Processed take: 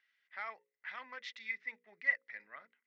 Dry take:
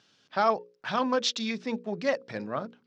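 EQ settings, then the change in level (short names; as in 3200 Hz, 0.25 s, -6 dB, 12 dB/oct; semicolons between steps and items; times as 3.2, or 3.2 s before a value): band-pass 2000 Hz, Q 19; +8.0 dB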